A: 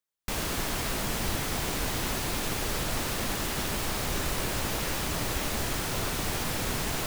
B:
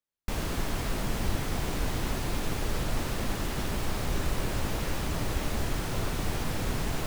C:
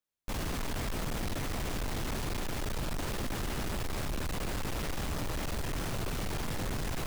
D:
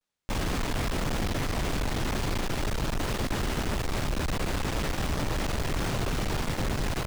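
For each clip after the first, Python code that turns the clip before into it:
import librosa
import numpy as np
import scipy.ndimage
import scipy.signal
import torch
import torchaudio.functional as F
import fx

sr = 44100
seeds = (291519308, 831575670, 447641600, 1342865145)

y1 = fx.tilt_eq(x, sr, slope=-1.5)
y1 = F.gain(torch.from_numpy(y1), -2.5).numpy()
y2 = np.clip(y1, -10.0 ** (-31.0 / 20.0), 10.0 ** (-31.0 / 20.0))
y3 = fx.vibrato(y2, sr, rate_hz=0.37, depth_cents=42.0)
y3 = fx.running_max(y3, sr, window=3)
y3 = F.gain(torch.from_numpy(y3), 6.0).numpy()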